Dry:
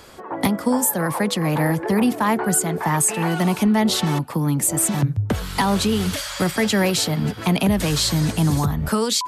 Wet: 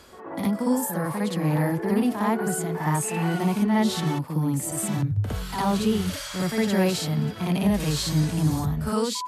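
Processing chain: harmonic-percussive split percussive -9 dB; reverse echo 59 ms -4.5 dB; gain -4 dB

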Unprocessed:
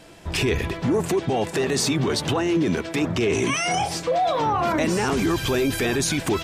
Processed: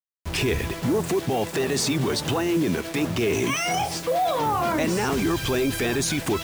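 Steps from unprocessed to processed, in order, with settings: bit-crush 6-bit; gain -1.5 dB

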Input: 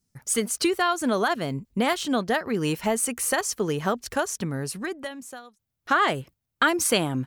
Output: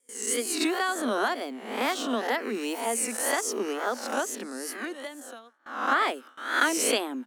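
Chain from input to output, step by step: spectral swells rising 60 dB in 0.69 s; steep high-pass 230 Hz 72 dB/oct; wow and flutter 120 cents; gate with hold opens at -29 dBFS; gain -5.5 dB

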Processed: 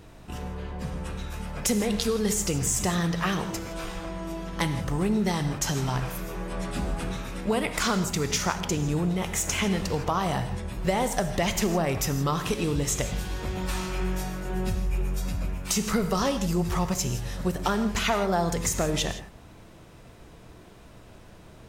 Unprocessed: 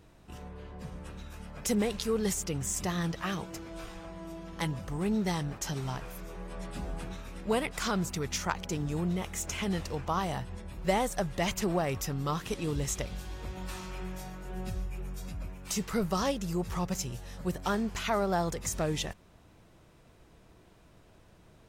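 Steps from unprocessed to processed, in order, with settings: compressor, threshold -31 dBFS, peak gain reduction 9 dB; non-linear reverb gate 0.19 s flat, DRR 8.5 dB; gain +9 dB

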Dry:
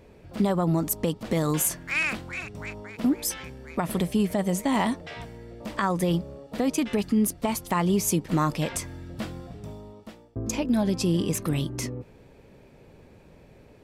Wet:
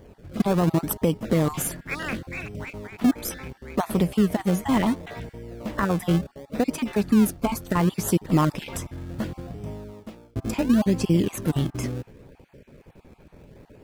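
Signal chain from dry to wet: random spectral dropouts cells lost 20%; bell 6000 Hz -5.5 dB 2.5 oct; in parallel at -8 dB: decimation with a swept rate 32×, swing 100% 0.7 Hz; on the sum: gain +2 dB

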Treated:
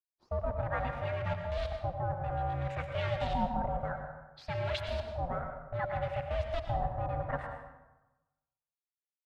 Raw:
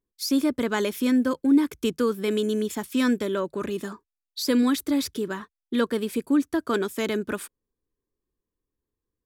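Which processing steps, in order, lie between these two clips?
G.711 law mismatch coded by A; notch 660 Hz, Q 12; reverse; compressor 8:1, threshold -30 dBFS, peak gain reduction 14.5 dB; reverse; phaser 0.32 Hz, delay 1.7 ms, feedback 21%; in parallel at -12 dB: wrapped overs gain 29 dB; on the sum: LFO low-pass saw up 0.6 Hz 520–3900 Hz; ring modulator 350 Hz; plate-style reverb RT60 1.1 s, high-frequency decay 0.55×, pre-delay 80 ms, DRR 4.5 dB

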